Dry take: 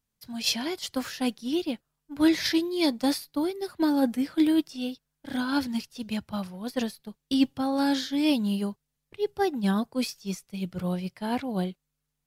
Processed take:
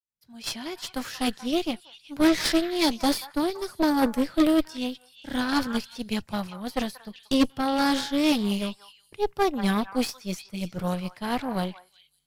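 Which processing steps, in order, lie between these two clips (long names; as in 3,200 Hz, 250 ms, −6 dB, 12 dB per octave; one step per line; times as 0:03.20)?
fade in at the beginning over 1.24 s
echo through a band-pass that steps 183 ms, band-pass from 1,200 Hz, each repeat 1.4 octaves, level −7 dB
harmonic generator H 6 −14 dB, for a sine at −11.5 dBFS
level +1 dB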